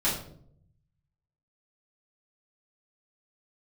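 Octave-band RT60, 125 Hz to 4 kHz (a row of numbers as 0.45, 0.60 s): 1.4, 0.95, 0.75, 0.50, 0.40, 0.40 s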